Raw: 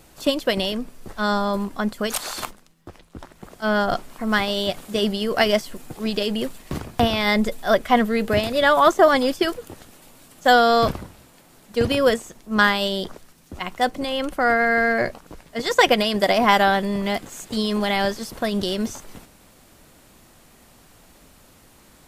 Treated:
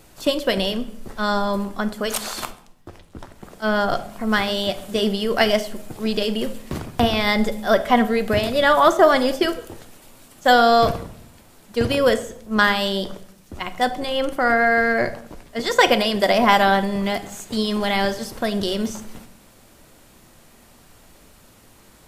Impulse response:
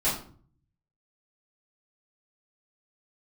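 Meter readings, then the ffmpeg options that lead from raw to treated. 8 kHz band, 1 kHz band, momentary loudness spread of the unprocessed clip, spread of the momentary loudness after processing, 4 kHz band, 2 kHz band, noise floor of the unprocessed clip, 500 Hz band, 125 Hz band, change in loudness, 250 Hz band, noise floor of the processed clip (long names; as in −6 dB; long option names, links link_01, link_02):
+0.5 dB, +1.0 dB, 13 LU, 14 LU, +1.0 dB, +0.5 dB, −53 dBFS, +1.0 dB, +1.0 dB, +1.0 dB, +1.0 dB, −51 dBFS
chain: -filter_complex "[0:a]asplit=2[link_01][link_02];[1:a]atrim=start_sample=2205,asetrate=29106,aresample=44100[link_03];[link_02][link_03]afir=irnorm=-1:irlink=0,volume=-23.5dB[link_04];[link_01][link_04]amix=inputs=2:normalize=0"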